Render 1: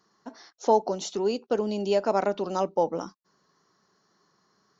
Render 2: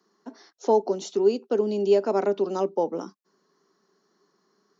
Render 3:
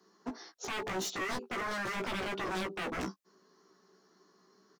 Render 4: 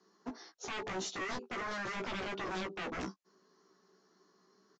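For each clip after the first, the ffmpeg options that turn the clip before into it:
-filter_complex "[0:a]highpass=f=200:w=0.5412,highpass=f=200:w=1.3066,equalizer=f=400:w=6.5:g=8,acrossover=split=350|2000[s0][s1][s2];[s0]acontrast=61[s3];[s3][s1][s2]amix=inputs=3:normalize=0,volume=0.708"
-filter_complex "[0:a]alimiter=limit=0.0841:level=0:latency=1:release=31,aeval=exprs='0.0211*(abs(mod(val(0)/0.0211+3,4)-2)-1)':c=same,asplit=2[s0][s1];[s1]adelay=16,volume=0.708[s2];[s0][s2]amix=inputs=2:normalize=0,volume=1.12"
-af "aresample=16000,aresample=44100,volume=0.708"

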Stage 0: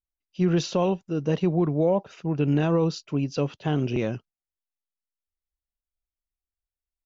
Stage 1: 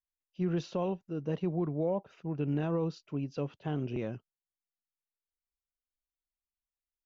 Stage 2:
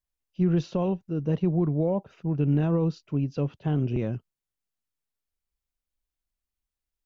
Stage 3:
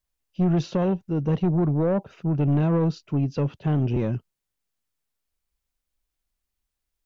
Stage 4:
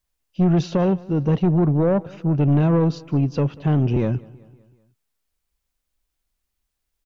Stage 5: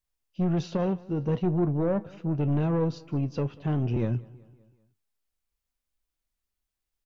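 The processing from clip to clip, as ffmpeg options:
-af "lowpass=f=2400:p=1,volume=0.355"
-af "lowshelf=f=220:g=11,volume=1.33"
-af "asoftclip=type=tanh:threshold=0.0841,volume=1.88"
-af "aecho=1:1:190|380|570|760:0.0708|0.0375|0.0199|0.0105,volume=1.58"
-af "flanger=delay=8.1:depth=1.8:regen=72:speed=0.7:shape=triangular,volume=0.708"

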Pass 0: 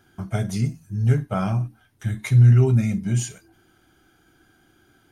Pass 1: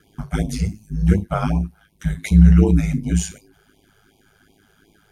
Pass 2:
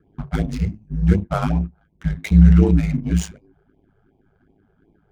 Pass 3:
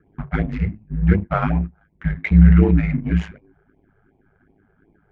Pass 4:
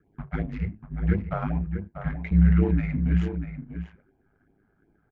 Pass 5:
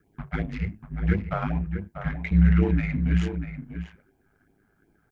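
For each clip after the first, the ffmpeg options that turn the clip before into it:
-af "aeval=exprs='val(0)*sin(2*PI*52*n/s)':c=same,afftfilt=real='re*(1-between(b*sr/1024,240*pow(1600/240,0.5+0.5*sin(2*PI*2.7*pts/sr))/1.41,240*pow(1600/240,0.5+0.5*sin(2*PI*2.7*pts/sr))*1.41))':imag='im*(1-between(b*sr/1024,240*pow(1600/240,0.5+0.5*sin(2*PI*2.7*pts/sr))/1.41,240*pow(1600/240,0.5+0.5*sin(2*PI*2.7*pts/sr))*1.41))':win_size=1024:overlap=0.75,volume=2"
-af "adynamicsmooth=sensitivity=6:basefreq=750"
-af "lowpass=f=2000:t=q:w=2.2"
-filter_complex "[0:a]acrossover=split=1000[s0][s1];[s1]alimiter=limit=0.0891:level=0:latency=1:release=168[s2];[s0][s2]amix=inputs=2:normalize=0,asplit=2[s3][s4];[s4]adelay=641.4,volume=0.398,highshelf=f=4000:g=-14.4[s5];[s3][s5]amix=inputs=2:normalize=0,volume=0.422"
-af "highshelf=f=2300:g=11.5"

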